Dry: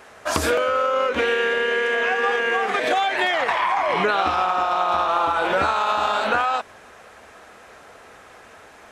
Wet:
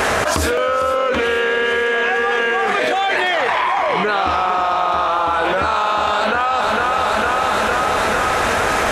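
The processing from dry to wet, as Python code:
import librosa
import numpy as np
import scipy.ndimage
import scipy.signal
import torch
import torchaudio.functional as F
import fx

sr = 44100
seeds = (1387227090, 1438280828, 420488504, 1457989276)

y = fx.low_shelf(x, sr, hz=110.0, db=6.0)
y = fx.echo_feedback(y, sr, ms=455, feedback_pct=60, wet_db=-14.5)
y = fx.env_flatten(y, sr, amount_pct=100)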